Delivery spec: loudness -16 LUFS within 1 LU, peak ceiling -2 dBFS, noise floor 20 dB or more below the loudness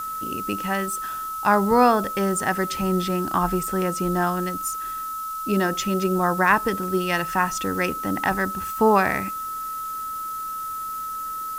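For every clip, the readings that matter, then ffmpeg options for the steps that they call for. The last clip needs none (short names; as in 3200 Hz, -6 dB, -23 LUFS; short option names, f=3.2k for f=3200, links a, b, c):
steady tone 1300 Hz; tone level -28 dBFS; noise floor -31 dBFS; noise floor target -44 dBFS; loudness -23.5 LUFS; peak -4.5 dBFS; loudness target -16.0 LUFS
-> -af "bandreject=f=1.3k:w=30"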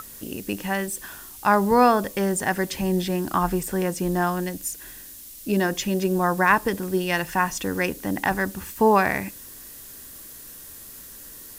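steady tone none; noise floor -42 dBFS; noise floor target -44 dBFS
-> -af "afftdn=nr=6:nf=-42"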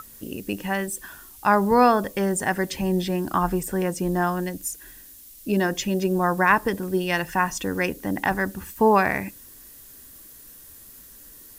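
noise floor -47 dBFS; loudness -23.5 LUFS; peak -4.5 dBFS; loudness target -16.0 LUFS
-> -af "volume=7.5dB,alimiter=limit=-2dB:level=0:latency=1"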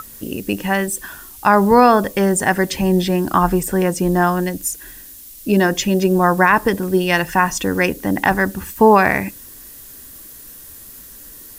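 loudness -16.5 LUFS; peak -2.0 dBFS; noise floor -39 dBFS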